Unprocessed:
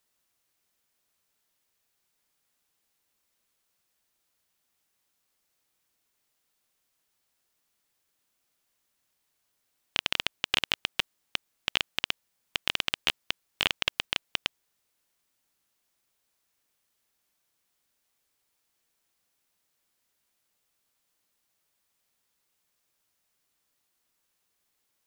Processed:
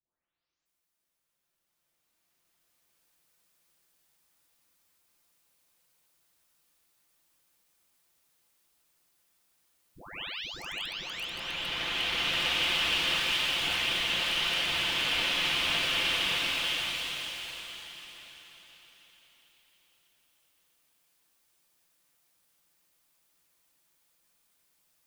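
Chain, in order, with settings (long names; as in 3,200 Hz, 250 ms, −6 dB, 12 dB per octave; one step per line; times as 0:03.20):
every frequency bin delayed by itself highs late, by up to 655 ms
slow-attack reverb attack 2,340 ms, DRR −11.5 dB
level −5.5 dB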